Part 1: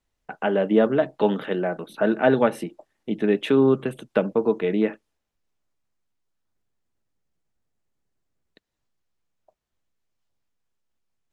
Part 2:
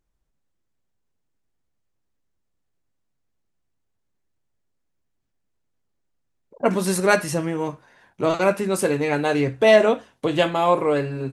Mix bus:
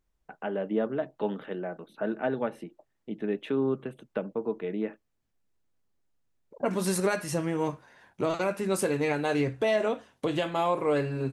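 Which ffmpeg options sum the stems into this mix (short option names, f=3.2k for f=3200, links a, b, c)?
-filter_complex "[0:a]highshelf=f=3.8k:g=-8,volume=-9.5dB[a];[1:a]volume=-2dB[b];[a][b]amix=inputs=2:normalize=0,alimiter=limit=-16.5dB:level=0:latency=1:release=349"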